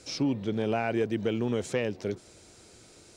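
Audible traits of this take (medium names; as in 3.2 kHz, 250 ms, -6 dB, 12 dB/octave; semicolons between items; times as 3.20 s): noise floor -55 dBFS; spectral tilt -5.5 dB/octave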